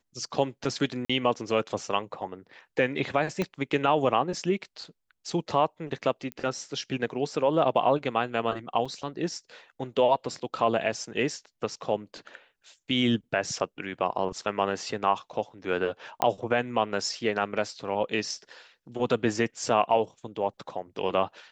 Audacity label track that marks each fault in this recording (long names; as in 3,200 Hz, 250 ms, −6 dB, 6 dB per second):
1.050000	1.090000	drop-out 45 ms
3.420000	3.420000	click −15 dBFS
6.320000	6.320000	click −22 dBFS
8.850000	8.860000	drop-out 5.7 ms
16.220000	16.220000	click −10 dBFS